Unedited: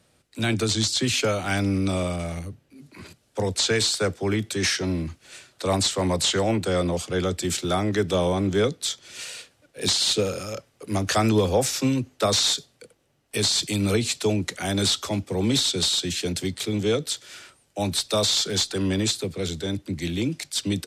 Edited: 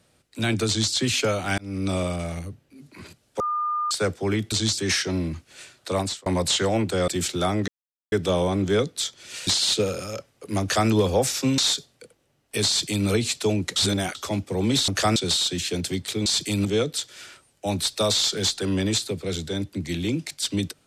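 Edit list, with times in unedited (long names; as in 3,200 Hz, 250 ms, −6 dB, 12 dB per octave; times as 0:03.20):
0:00.67–0:00.93: duplicate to 0:04.52
0:01.58–0:01.92: fade in
0:03.40–0:03.91: beep over 1,210 Hz −22.5 dBFS
0:05.65–0:06.00: fade out
0:06.82–0:07.37: remove
0:07.97: splice in silence 0.44 s
0:09.32–0:09.86: remove
0:11.00–0:11.28: duplicate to 0:15.68
0:11.97–0:12.38: remove
0:13.48–0:13.87: duplicate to 0:16.78
0:14.56–0:14.95: reverse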